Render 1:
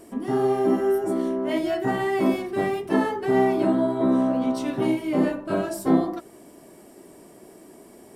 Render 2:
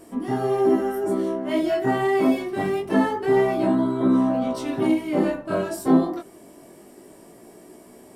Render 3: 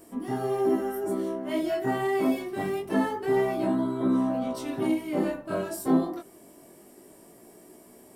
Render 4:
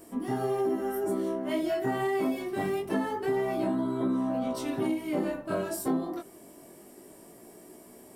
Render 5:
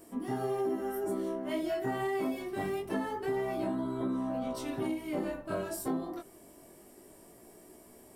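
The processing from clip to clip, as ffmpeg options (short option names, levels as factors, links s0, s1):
-af "flanger=delay=16:depth=7.1:speed=0.25,volume=1.58"
-af "highshelf=f=11000:g=11.5,volume=0.531"
-af "acompressor=threshold=0.0501:ratio=6,volume=1.12"
-af "asubboost=boost=2.5:cutoff=100,volume=0.668"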